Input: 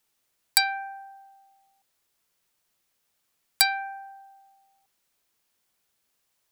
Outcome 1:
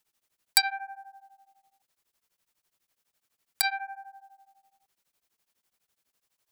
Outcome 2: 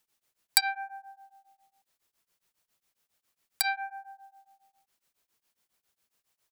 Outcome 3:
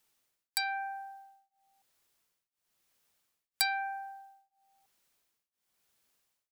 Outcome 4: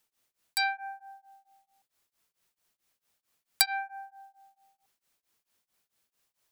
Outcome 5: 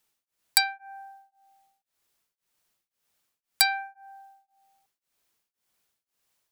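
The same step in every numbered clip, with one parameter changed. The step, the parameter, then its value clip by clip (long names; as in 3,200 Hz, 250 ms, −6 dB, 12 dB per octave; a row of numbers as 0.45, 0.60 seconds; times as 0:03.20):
tremolo along a rectified sine, nulls at: 12, 7.3, 1, 4.5, 1.9 Hertz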